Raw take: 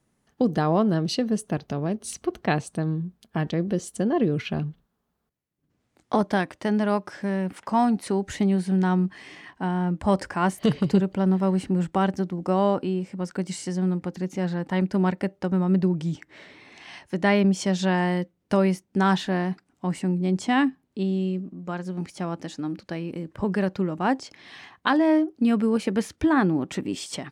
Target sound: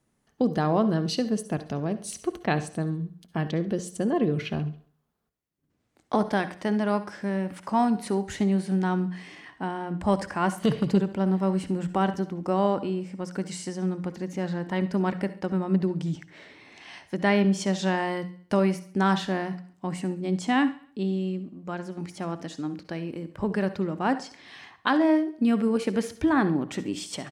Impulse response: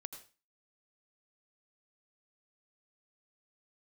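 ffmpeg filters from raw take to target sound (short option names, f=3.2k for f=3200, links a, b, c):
-filter_complex "[0:a]bandreject=f=60:t=h:w=6,bandreject=f=120:t=h:w=6,bandreject=f=180:t=h:w=6,aecho=1:1:69|138|207|276:0.112|0.0572|0.0292|0.0149,asplit=2[a][b];[1:a]atrim=start_sample=2205,asetrate=61740,aresample=44100[c];[b][c]afir=irnorm=-1:irlink=0,volume=6dB[d];[a][d]amix=inputs=2:normalize=0,volume=-7dB"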